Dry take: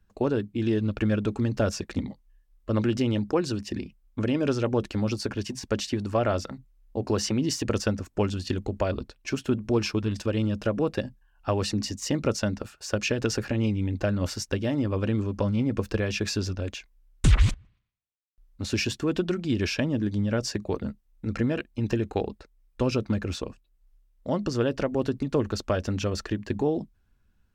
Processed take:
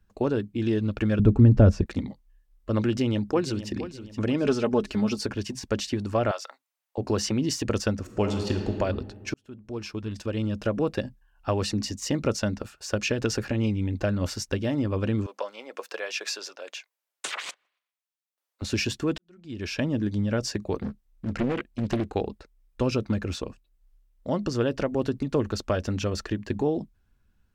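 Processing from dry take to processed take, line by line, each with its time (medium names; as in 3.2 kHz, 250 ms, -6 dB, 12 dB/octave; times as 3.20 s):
1.19–1.86 s: tilt EQ -4 dB/octave
2.88–3.71 s: echo throw 470 ms, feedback 40%, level -12.5 dB
4.44–5.26 s: comb 4.7 ms
6.31–6.98 s: high-pass 670 Hz 24 dB/octave
7.99–8.75 s: reverb throw, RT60 1.8 s, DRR 4 dB
9.34–10.72 s: fade in
15.26–18.62 s: high-pass 530 Hz 24 dB/octave
19.18–19.84 s: fade in quadratic
20.82–22.14 s: loudspeaker Doppler distortion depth 0.86 ms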